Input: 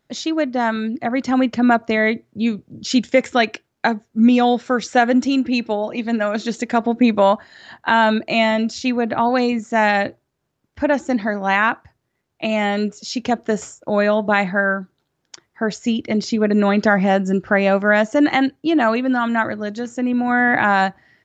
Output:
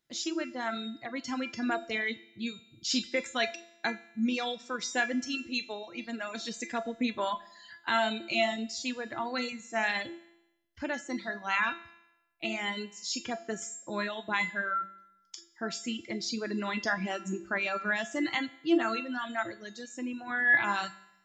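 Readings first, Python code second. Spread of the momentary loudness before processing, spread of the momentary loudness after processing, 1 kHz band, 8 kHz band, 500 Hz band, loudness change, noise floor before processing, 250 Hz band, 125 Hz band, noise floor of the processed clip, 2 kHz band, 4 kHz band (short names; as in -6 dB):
8 LU, 10 LU, -15.5 dB, n/a, -17.0 dB, -13.5 dB, -73 dBFS, -16.5 dB, -18.5 dB, -67 dBFS, -10.0 dB, -7.0 dB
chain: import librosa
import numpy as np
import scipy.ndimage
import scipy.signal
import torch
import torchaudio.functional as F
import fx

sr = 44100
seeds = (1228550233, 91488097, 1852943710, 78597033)

y = fx.peak_eq(x, sr, hz=670.0, db=-5.0, octaves=0.6)
y = fx.comb_fb(y, sr, f0_hz=340.0, decay_s=0.72, harmonics='all', damping=0.0, mix_pct=90)
y = fx.rev_schroeder(y, sr, rt60_s=0.82, comb_ms=32, drr_db=10.5)
y = fx.dereverb_blind(y, sr, rt60_s=1.5)
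y = fx.high_shelf(y, sr, hz=2300.0, db=10.0)
y = F.gain(torch.from_numpy(y), 3.0).numpy()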